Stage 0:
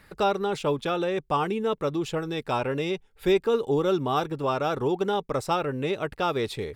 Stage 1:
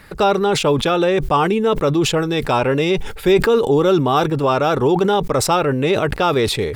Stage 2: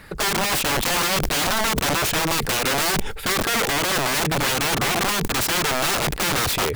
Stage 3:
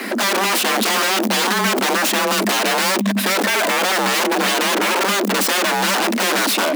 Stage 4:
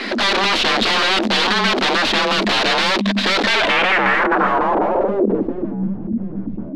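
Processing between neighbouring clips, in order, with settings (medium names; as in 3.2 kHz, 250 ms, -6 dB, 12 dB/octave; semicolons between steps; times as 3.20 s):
in parallel at +1.5 dB: peak limiter -20 dBFS, peak gain reduction 8 dB; on the sum: decay stretcher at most 69 dB/s; trim +4 dB
peak limiter -9.5 dBFS, peak gain reduction 8 dB; integer overflow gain 16.5 dB
waveshaping leveller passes 5; frequency shift +190 Hz
tracing distortion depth 0.16 ms; low-pass sweep 4.1 kHz -> 180 Hz, 3.51–5.97 s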